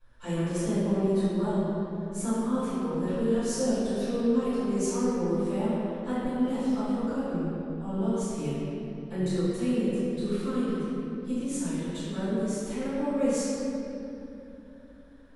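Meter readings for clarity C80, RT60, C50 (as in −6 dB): −3.0 dB, 3.0 s, −5.0 dB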